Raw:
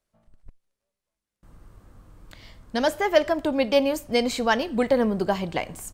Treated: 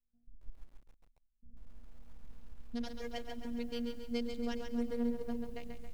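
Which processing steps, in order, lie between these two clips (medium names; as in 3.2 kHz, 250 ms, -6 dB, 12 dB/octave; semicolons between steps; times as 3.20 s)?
local Wiener filter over 41 samples; amplifier tone stack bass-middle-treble 10-0-1; in parallel at -11 dB: sine folder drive 5 dB, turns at -32 dBFS; on the sum: robot voice 237 Hz; on a send at -16 dB: reverberation RT60 2.0 s, pre-delay 98 ms; on the sum: bit-crushed delay 137 ms, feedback 55%, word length 11-bit, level -6 dB; trim +4 dB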